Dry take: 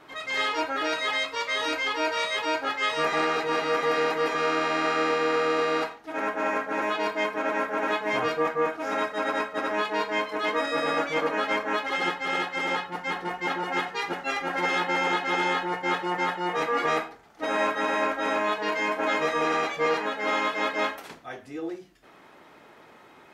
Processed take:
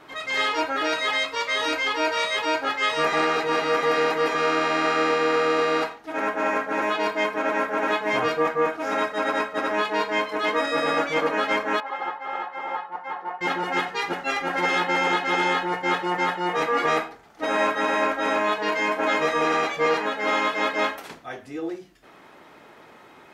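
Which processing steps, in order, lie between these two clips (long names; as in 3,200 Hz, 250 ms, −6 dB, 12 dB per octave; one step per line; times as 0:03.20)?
0:11.80–0:13.41: resonant band-pass 900 Hz, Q 1.8
level +3 dB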